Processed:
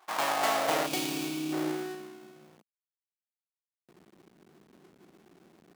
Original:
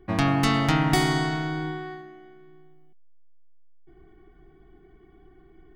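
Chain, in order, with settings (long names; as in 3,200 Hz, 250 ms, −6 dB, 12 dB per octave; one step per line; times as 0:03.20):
each half-wave held at its own peak
gain on a spectral selection 0:00.87–0:01.53, 360–2,200 Hz −13 dB
high-pass filter sweep 890 Hz → 200 Hz, 0:00.10–0:02.26
level −8.5 dB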